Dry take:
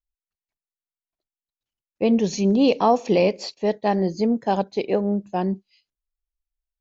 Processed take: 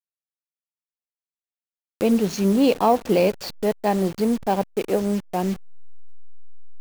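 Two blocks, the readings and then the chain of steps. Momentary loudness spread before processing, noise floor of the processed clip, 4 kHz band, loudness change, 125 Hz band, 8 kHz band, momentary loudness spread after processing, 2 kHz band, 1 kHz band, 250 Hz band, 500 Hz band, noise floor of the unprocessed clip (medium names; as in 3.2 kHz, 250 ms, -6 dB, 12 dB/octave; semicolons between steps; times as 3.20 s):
8 LU, under -85 dBFS, -0.5 dB, 0.0 dB, 0.0 dB, no reading, 8 LU, 0.0 dB, 0.0 dB, 0.0 dB, 0.0 dB, under -85 dBFS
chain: send-on-delta sampling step -30.5 dBFS; upward compressor, threshold -24 dBFS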